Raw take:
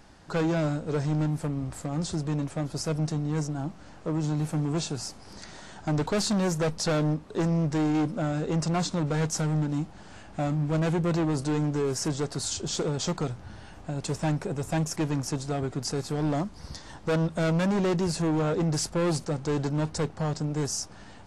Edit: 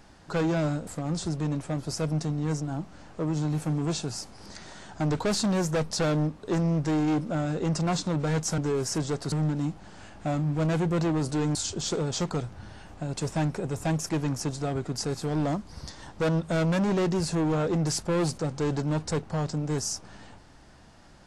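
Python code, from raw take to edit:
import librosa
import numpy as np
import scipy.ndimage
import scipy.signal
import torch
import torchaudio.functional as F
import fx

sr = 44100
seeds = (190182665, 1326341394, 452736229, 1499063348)

y = fx.edit(x, sr, fx.cut(start_s=0.87, length_s=0.87),
    fx.move(start_s=11.68, length_s=0.74, to_s=9.45), tone=tone)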